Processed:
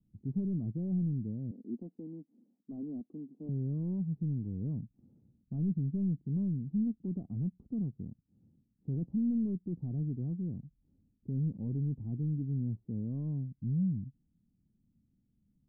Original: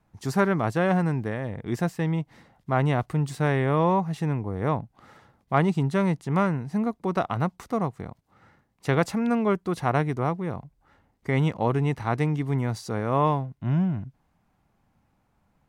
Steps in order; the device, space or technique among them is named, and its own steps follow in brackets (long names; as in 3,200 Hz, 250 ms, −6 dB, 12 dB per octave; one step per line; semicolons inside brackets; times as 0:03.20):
0:01.51–0:03.49: elliptic band-pass filter 240–1,200 Hz, stop band 40 dB
overdriven synthesiser ladder filter (soft clipping −23.5 dBFS, distortion −10 dB; transistor ladder low-pass 290 Hz, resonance 40%)
level +1.5 dB